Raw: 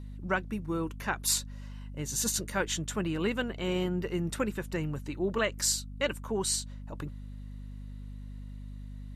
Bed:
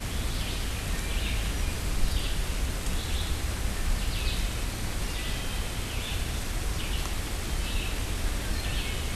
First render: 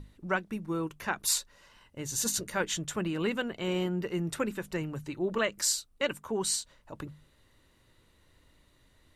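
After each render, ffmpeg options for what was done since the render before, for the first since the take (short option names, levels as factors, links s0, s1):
-af "bandreject=f=50:t=h:w=6,bandreject=f=100:t=h:w=6,bandreject=f=150:t=h:w=6,bandreject=f=200:t=h:w=6,bandreject=f=250:t=h:w=6"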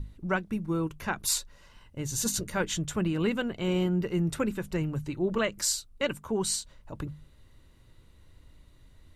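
-af "lowshelf=f=170:g=12,bandreject=f=1800:w=22"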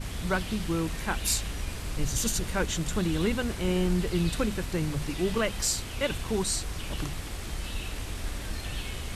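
-filter_complex "[1:a]volume=0.596[s0];[0:a][s0]amix=inputs=2:normalize=0"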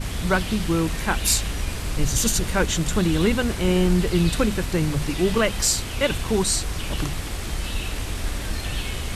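-af "volume=2.24"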